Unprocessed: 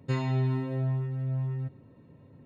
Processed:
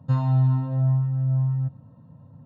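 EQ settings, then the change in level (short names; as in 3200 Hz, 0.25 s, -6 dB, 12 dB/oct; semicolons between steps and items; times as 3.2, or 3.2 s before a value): HPF 110 Hz; tone controls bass +7 dB, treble -15 dB; fixed phaser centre 900 Hz, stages 4; +5.0 dB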